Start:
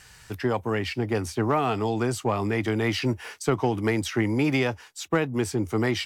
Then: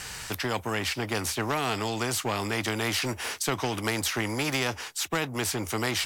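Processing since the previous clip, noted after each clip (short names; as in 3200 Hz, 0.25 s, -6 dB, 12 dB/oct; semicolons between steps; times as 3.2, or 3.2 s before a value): spectral compressor 2:1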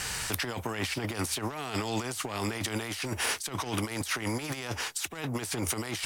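dynamic EQ 9400 Hz, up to +6 dB, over -51 dBFS, Q 3.5; negative-ratio compressor -32 dBFS, ratio -0.5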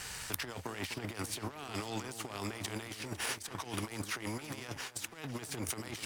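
echo with dull and thin repeats by turns 0.251 s, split 1700 Hz, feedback 59%, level -9.5 dB; power-law curve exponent 1.4; gain -1 dB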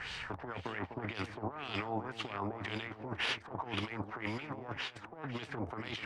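LFO low-pass sine 1.9 Hz 740–3500 Hz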